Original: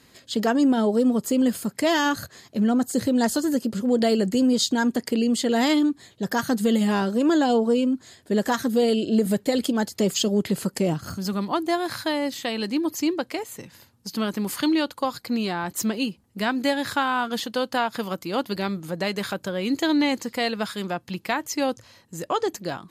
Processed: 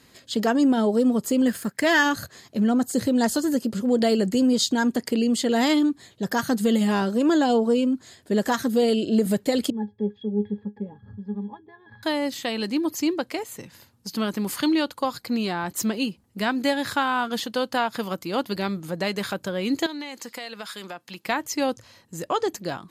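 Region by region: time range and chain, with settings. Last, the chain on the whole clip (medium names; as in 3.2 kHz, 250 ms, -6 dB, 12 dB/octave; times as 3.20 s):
1.47–2.03 s: companding laws mixed up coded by A + peaking EQ 1.7 kHz +10.5 dB 0.49 oct
9.70–12.03 s: distance through air 370 m + pitch-class resonator G#, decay 0.12 s
19.86–21.25 s: high-pass 160 Hz + bass shelf 480 Hz -10.5 dB + compression 4:1, threshold -31 dBFS
whole clip: none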